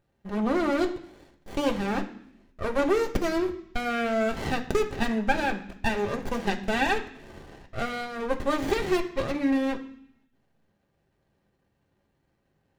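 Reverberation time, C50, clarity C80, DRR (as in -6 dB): 0.65 s, 12.5 dB, 15.5 dB, 2.0 dB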